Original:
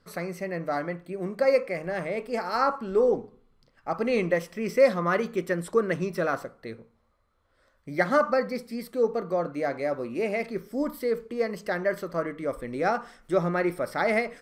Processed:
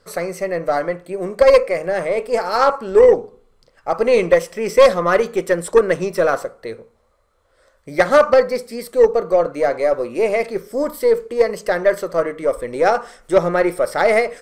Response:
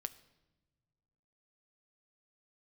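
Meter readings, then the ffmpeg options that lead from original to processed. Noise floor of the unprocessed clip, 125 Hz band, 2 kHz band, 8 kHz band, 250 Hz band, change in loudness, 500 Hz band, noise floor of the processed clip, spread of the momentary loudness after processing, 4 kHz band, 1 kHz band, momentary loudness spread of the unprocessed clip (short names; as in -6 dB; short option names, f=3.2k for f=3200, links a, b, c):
-68 dBFS, +2.5 dB, +7.5 dB, +13.0 dB, +4.0 dB, +10.5 dB, +11.5 dB, -59 dBFS, 11 LU, +11.0 dB, +9.0 dB, 10 LU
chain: -af "equalizer=f=125:t=o:w=1:g=-4,equalizer=f=250:t=o:w=1:g=-6,equalizer=f=500:t=o:w=1:g=7,equalizer=f=8k:t=o:w=1:g=7,aeval=exprs='0.668*(cos(1*acos(clip(val(0)/0.668,-1,1)))-cos(1*PI/2))+0.237*(cos(2*acos(clip(val(0)/0.668,-1,1)))-cos(2*PI/2))+0.0119*(cos(4*acos(clip(val(0)/0.668,-1,1)))-cos(4*PI/2))+0.0266*(cos(6*acos(clip(val(0)/0.668,-1,1)))-cos(6*PI/2))+0.0473*(cos(8*acos(clip(val(0)/0.668,-1,1)))-cos(8*PI/2))':c=same,apsyclip=8.5dB,volume=-1.5dB"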